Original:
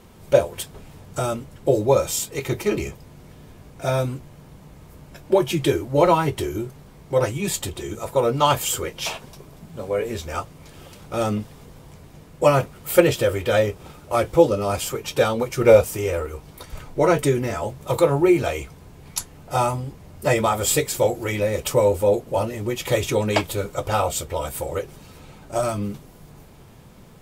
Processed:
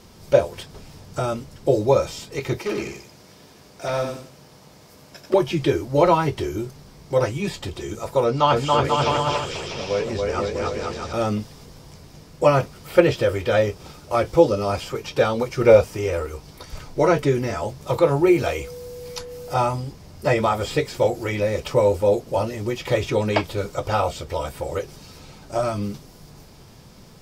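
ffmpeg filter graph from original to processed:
-filter_complex "[0:a]asettb=1/sr,asplit=3[a][b][c];[a]atrim=end=2.584[d];[b]atrim=start=2.58:end=5.34,asetpts=PTS-STARTPTS,afade=t=in:d=0.004:c=qsin,afade=t=out:st=2.756:d=0.004:c=qsin,highpass=f=290:p=1,volume=20.5dB,asoftclip=hard,volume=-20.5dB,aecho=1:1:90|180|270|360:0.501|0.145|0.0421|0.0122,atrim=end_sample=121716[e];[c]atrim=start=5.336[f];[d][e]acrossfade=d=0.004:c1=hsin:c2=qsin[g];[g][f]acrossfade=d=0.004:c1=qsin:c2=hsin,asettb=1/sr,asplit=3[h][i][j];[h]atrim=end=8.244[k];[i]atrim=start=8.24:end=11.13,asetpts=PTS-STARTPTS,afade=t=in:d=0.004:c=qsin,afade=t=out:st=2.886:d=0.004:c=qsin,lowpass=7.3k,aecho=1:1:280|490|647.5|765.6|854.2|920.7:0.794|0.631|0.501|0.398|0.316|0.251,atrim=end_sample=127449[l];[j]atrim=start=11.126[m];[k][l]acrossfade=d=0.004:c1=hsin:c2=qsin[n];[n][m]acrossfade=d=0.004:c1=qsin:c2=hsin,asettb=1/sr,asplit=3[o][p][q];[o]atrim=end=18.274[r];[p]atrim=start=18.27:end=19.54,asetpts=PTS-STARTPTS,afade=t=in:d=0.004:c=qsin,afade=t=out:st=1.266:d=0.004:c=qsin,aemphasis=mode=production:type=50kf,aeval=exprs='val(0)+0.02*sin(2*PI*490*n/s)':c=same[s];[q]atrim=start=19.536[t];[r][s]acrossfade=d=0.004:c1=hsin:c2=qsin[u];[u][t]acrossfade=d=0.004:c1=qsin:c2=hsin,acrossover=split=3000[v][w];[w]acompressor=threshold=-46dB:ratio=4:attack=1:release=60[x];[v][x]amix=inputs=2:normalize=0,equalizer=f=5.1k:w=1.9:g=11"

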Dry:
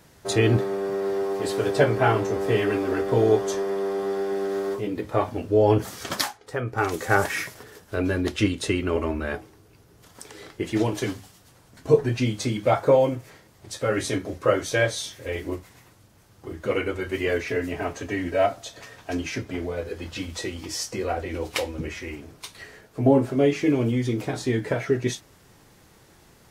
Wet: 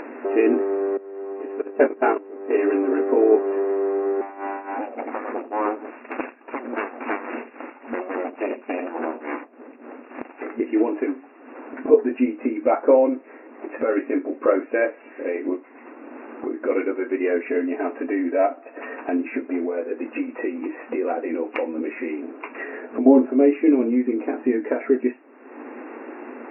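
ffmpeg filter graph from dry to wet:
-filter_complex "[0:a]asettb=1/sr,asplit=3[a][b][c];[a]atrim=end=0.974[d];[b]atrim=start=0.97:end=2.58,asetpts=PTS-STARTPTS,afade=t=in:d=0.004:c=qsin,afade=t=out:st=1.606:d=0.004:c=qsin,agate=range=-19dB:threshold=-21dB:ratio=16:release=100:detection=peak,lowpass=7.7k,highshelf=f=4.3k:g=7[e];[c]atrim=start=2.576[f];[d][e]acrossfade=d=0.004:c1=hsin:c2=qsin[g];[g][f]acrossfade=d=0.004:c1=qsin:c2=hsin,asettb=1/sr,asplit=3[h][i][j];[h]atrim=end=4.214[k];[i]atrim=start=4.21:end=10.42,asetpts=PTS-STARTPTS,afade=t=in:d=0.004:c=qsin,afade=t=out:st=6.206:d=0.004:c=qsin,aecho=1:1:83:0.355,atrim=end_sample=273861,aeval=exprs='abs(val(0))':c=same,tremolo=f=3.5:d=0.79[l];[j]atrim=start=10.416[m];[k][l]acrossfade=d=0.004:c1=hsin:c2=qsin[n];[n][m]acrossfade=d=0.004:c1=qsin:c2=hsin,afftfilt=real='re*between(b*sr/4096,230,2800)':imag='im*between(b*sr/4096,230,2800)':win_size=4096:overlap=0.75,aemphasis=mode=reproduction:type=riaa,acompressor=mode=upward:threshold=-20dB:ratio=2.5"

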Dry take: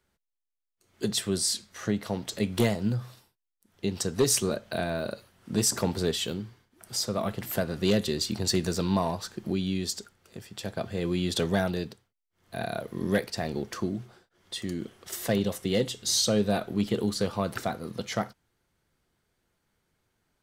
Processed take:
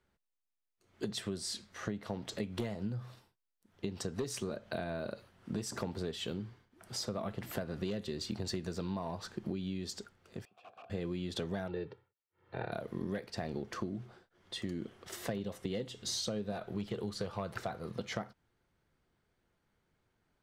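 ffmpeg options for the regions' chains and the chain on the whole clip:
-filter_complex "[0:a]asettb=1/sr,asplit=3[a][b][c];[a]atrim=end=10.454[d];[b]atrim=start=10.45:end=10.9,asetpts=PTS-STARTPTS,afade=t=in:d=0.004:c=qsin,afade=t=out:st=0.446:d=0.004:c=qsin,aeval=exprs='(mod(39.8*val(0)+1,2)-1)/39.8':c=same,asplit=3[e][f][g];[e]bandpass=f=730:t=q:w=8,volume=0dB[h];[f]bandpass=f=1.09k:t=q:w=8,volume=-6dB[i];[g]bandpass=f=2.44k:t=q:w=8,volume=-9dB[j];[h][i][j]amix=inputs=3:normalize=0[k];[c]atrim=start=10.896[l];[d][k]acrossfade=d=0.004:c1=hsin:c2=qsin[m];[m][l]acrossfade=d=0.004:c1=qsin:c2=hsin,asettb=1/sr,asplit=3[n][o][p];[n]atrim=end=11.684[q];[o]atrim=start=11.68:end=12.72,asetpts=PTS-STARTPTS,afade=t=in:d=0.004:c=qsin,afade=t=out:st=1.036:d=0.004:c=qsin,highpass=100,lowpass=2.4k,aecho=1:1:2.2:0.78,atrim=end_sample=45864[r];[p]atrim=start=12.716[s];[q][r]acrossfade=d=0.004:c1=hsin:c2=qsin[t];[t][s]acrossfade=d=0.004:c1=qsin:c2=hsin,asettb=1/sr,asplit=3[u][v][w];[u]atrim=end=16.524[x];[v]atrim=start=16.52:end=17.97,asetpts=PTS-STARTPTS,afade=t=in:d=0.004:c=qsin,afade=t=out:st=1.446:d=0.004:c=qsin,equalizer=f=260:w=2.3:g=-9,asoftclip=type=hard:threshold=-20.5dB[y];[w]atrim=start=17.966[z];[x][y]acrossfade=d=0.004:c1=hsin:c2=qsin[aa];[aa][z]acrossfade=d=0.004:c1=qsin:c2=hsin,lowpass=f=2.9k:p=1,acompressor=threshold=-32dB:ratio=10,volume=-1.5dB"

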